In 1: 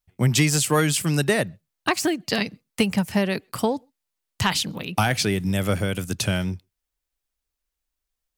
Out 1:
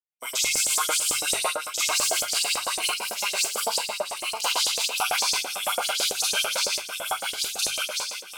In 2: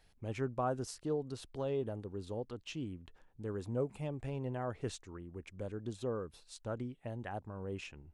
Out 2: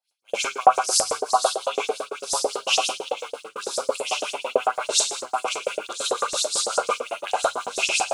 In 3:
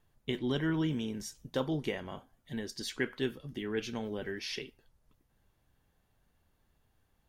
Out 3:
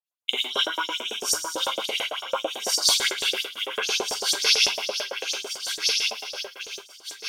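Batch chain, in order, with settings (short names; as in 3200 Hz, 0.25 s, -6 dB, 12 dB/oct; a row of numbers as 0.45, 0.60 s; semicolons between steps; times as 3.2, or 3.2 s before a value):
reverse delay 0.276 s, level -12.5 dB; Butterworth band-stop 1800 Hz, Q 3.1; high shelf 8100 Hz -9 dB; on a send: echo with dull and thin repeats by turns 0.694 s, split 1500 Hz, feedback 63%, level -2 dB; on the sum: Schroeder reverb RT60 0.65 s, combs from 32 ms, DRR -7.5 dB; vocal rider within 4 dB 2 s; harmonic tremolo 5.7 Hz, depth 50%, crossover 760 Hz; RIAA curve recording; LFO high-pass saw up 9 Hz 510–7800 Hz; expander -42 dBFS; notches 50/100/150 Hz; maximiser +5.5 dB; match loudness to -24 LUFS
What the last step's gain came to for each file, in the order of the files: -13.0, +7.0, +1.0 dB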